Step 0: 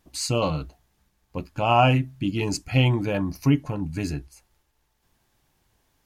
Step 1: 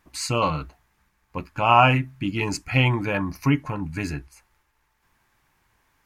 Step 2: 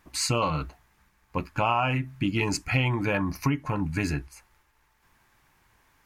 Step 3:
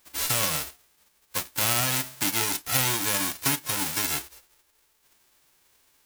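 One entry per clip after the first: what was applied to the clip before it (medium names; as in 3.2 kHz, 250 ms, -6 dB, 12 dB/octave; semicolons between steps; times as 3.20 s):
high-order bell 1.5 kHz +8.5 dB; trim -1 dB
compression 6:1, threshold -24 dBFS, peak gain reduction 13.5 dB; trim +2.5 dB
formants flattened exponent 0.1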